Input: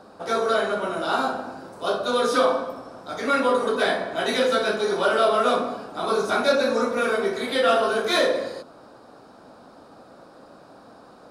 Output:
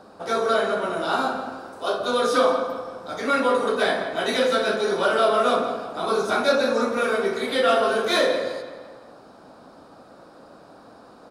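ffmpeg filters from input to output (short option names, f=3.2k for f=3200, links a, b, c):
-filter_complex "[0:a]asettb=1/sr,asplit=3[a][b][c];[a]atrim=end=1.554[d];[b]atrim=start=1.55:end=1.98,asetpts=PTS-STARTPTS,afade=t=in:d=0.004:c=qsin,afade=t=out:st=0.426:d=0.004:c=qsin,equalizer=f=160:t=o:w=0.79:g=-12.5[e];[c]atrim=start=1.976[f];[d][e]acrossfade=d=0.004:c1=hsin:c2=qsin[g];[g][f]acrossfade=d=0.004:c1=qsin:c2=hsin,asplit=2[h][i];[i]adelay=170,lowpass=f=4.9k:p=1,volume=-11.5dB,asplit=2[j][k];[k]adelay=170,lowpass=f=4.9k:p=1,volume=0.5,asplit=2[l][m];[m]adelay=170,lowpass=f=4.9k:p=1,volume=0.5,asplit=2[n][o];[o]adelay=170,lowpass=f=4.9k:p=1,volume=0.5,asplit=2[p][q];[q]adelay=170,lowpass=f=4.9k:p=1,volume=0.5[r];[h][j][l][n][p][r]amix=inputs=6:normalize=0"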